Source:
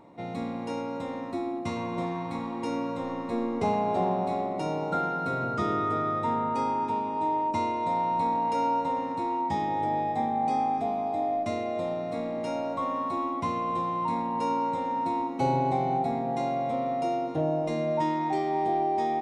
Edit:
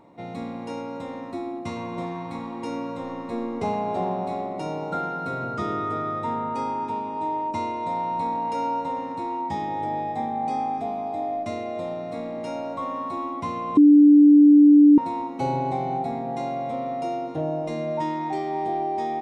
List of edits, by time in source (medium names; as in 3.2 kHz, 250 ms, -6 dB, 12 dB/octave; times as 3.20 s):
13.77–14.98 s: bleep 293 Hz -9 dBFS